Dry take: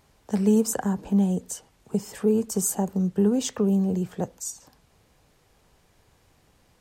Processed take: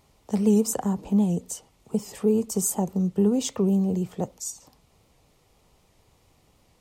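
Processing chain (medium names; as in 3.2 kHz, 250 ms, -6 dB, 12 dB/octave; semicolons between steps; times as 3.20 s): peaking EQ 1.6 kHz -13.5 dB 0.22 oct; warped record 78 rpm, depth 100 cents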